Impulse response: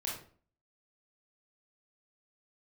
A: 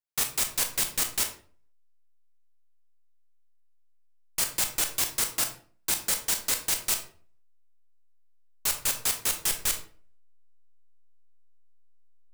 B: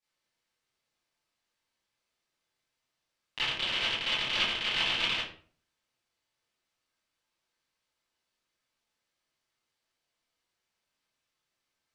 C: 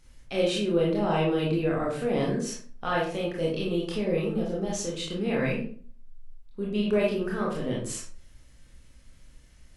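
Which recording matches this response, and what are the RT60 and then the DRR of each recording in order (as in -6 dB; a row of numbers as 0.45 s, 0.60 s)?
C; 0.45 s, 0.45 s, 0.45 s; 5.0 dB, -12.0 dB, -4.5 dB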